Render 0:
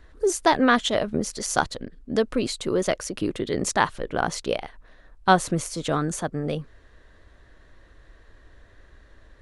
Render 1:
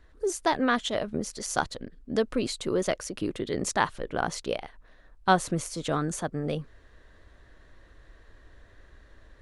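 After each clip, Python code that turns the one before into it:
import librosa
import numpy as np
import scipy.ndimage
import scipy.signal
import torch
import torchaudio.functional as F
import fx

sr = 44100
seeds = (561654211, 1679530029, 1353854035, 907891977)

y = fx.rider(x, sr, range_db=10, speed_s=2.0)
y = F.gain(torch.from_numpy(y), -5.5).numpy()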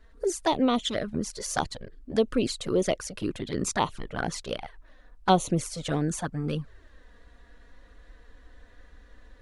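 y = fx.env_flanger(x, sr, rest_ms=4.7, full_db=-22.0)
y = F.gain(torch.from_numpy(y), 3.5).numpy()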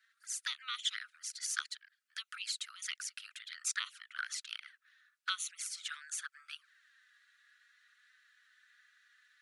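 y = scipy.signal.sosfilt(scipy.signal.butter(12, 1300.0, 'highpass', fs=sr, output='sos'), x)
y = F.gain(torch.from_numpy(y), -3.5).numpy()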